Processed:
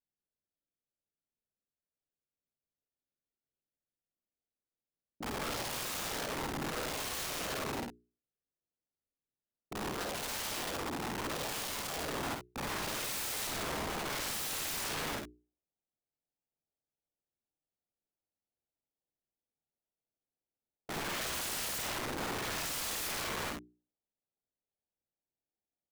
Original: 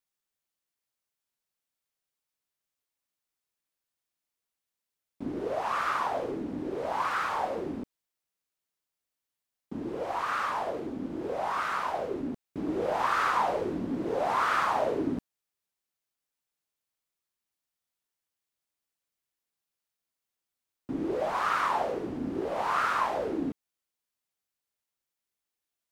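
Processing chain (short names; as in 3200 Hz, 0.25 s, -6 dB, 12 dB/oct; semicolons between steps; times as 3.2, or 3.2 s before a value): Wiener smoothing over 41 samples; notches 60/120/180/240/300/360/420 Hz; soft clip -24 dBFS, distortion -15 dB; low-pass sweep 5000 Hz -> 960 Hz, 11.97–14.59; wrapped overs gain 34 dB; early reflections 51 ms -5.5 dB, 65 ms -8.5 dB; mismatched tape noise reduction decoder only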